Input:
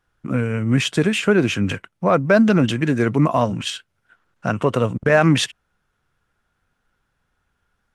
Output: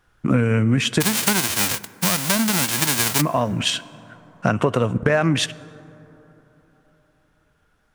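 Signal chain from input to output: 1–3.2 spectral whitening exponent 0.1; compressor 6:1, threshold -22 dBFS, peak gain reduction 12 dB; plate-style reverb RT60 4 s, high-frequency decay 0.3×, DRR 18.5 dB; vocal rider 2 s; gain +6 dB

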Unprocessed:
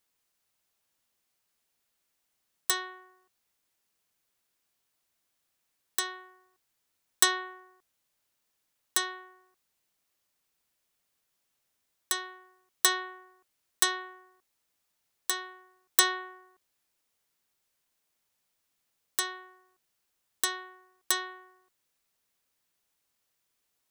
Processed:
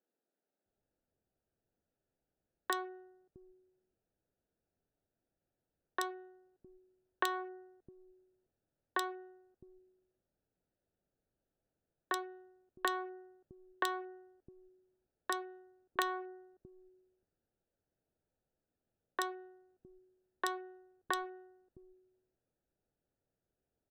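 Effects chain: Wiener smoothing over 41 samples; treble ducked by the level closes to 1800 Hz, closed at -33.5 dBFS; high shelf 2900 Hz -11 dB; compressor 6:1, threshold -36 dBFS, peak gain reduction 10.5 dB; three bands offset in time mids, highs, lows 30/660 ms, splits 220/2600 Hz; gain +7 dB

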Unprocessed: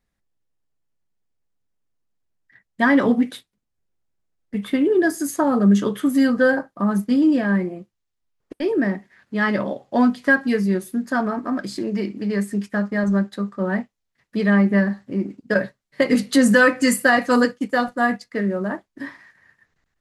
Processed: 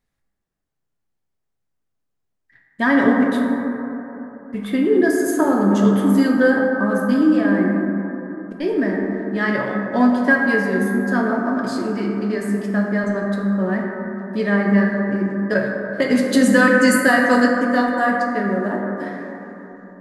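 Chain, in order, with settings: plate-style reverb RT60 3.7 s, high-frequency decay 0.25×, DRR -0.5 dB; gain -1 dB

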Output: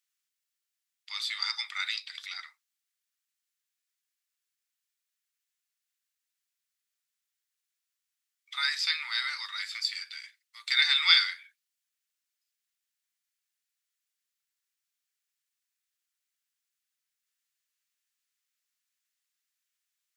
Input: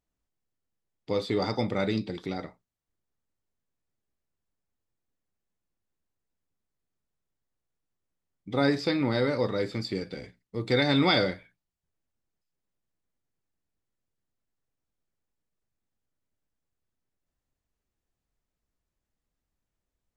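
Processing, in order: Bessel high-pass 2300 Hz, order 8; gain +8.5 dB

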